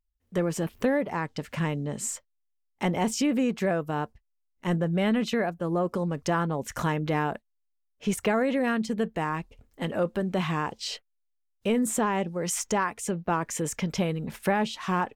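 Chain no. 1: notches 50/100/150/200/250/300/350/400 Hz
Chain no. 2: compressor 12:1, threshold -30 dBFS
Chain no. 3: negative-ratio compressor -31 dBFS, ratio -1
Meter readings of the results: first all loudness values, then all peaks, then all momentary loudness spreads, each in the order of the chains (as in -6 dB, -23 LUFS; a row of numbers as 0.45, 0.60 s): -29.0, -35.5, -31.5 LUFS; -13.5, -20.0, -16.0 dBFS; 8, 5, 7 LU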